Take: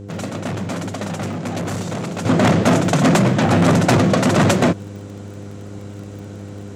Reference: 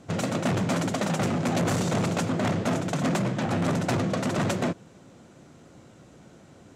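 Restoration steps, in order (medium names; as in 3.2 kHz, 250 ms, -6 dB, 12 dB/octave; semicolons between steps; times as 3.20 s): de-click; de-hum 100.8 Hz, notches 5; gain correction -11.5 dB, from 2.25 s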